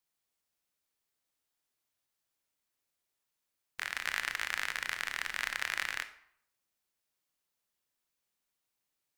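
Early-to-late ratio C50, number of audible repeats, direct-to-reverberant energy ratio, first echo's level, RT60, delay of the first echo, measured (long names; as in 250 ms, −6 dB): 12.5 dB, no echo audible, 9.5 dB, no echo audible, 0.70 s, no echo audible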